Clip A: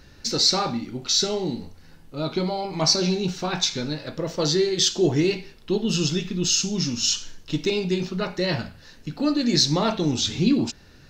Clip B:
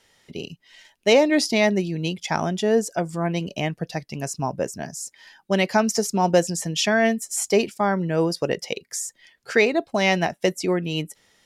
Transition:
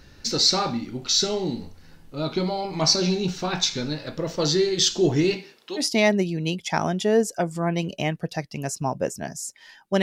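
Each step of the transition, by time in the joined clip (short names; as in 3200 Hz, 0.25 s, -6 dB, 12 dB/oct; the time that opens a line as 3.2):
clip A
5.35–5.84 HPF 150 Hz -> 940 Hz
5.8 switch to clip B from 1.38 s, crossfade 0.08 s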